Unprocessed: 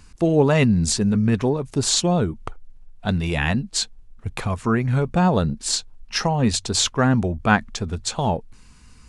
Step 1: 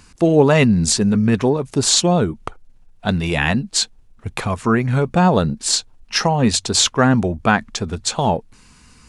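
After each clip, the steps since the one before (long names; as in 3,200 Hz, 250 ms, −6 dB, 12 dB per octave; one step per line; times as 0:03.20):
low-shelf EQ 84 Hz −10.5 dB
boost into a limiter +6 dB
level −1 dB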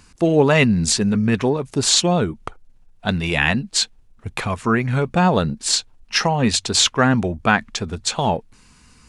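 dynamic equaliser 2,400 Hz, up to +5 dB, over −33 dBFS, Q 0.81
level −2.5 dB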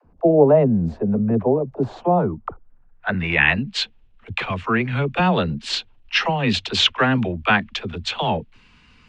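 all-pass dispersion lows, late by 50 ms, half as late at 370 Hz
low-pass filter sweep 650 Hz → 3,000 Hz, 0:01.76–0:03.79
level −2.5 dB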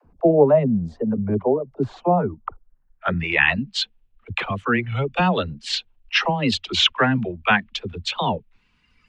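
reverb reduction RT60 1.9 s
wow of a warped record 33 1/3 rpm, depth 160 cents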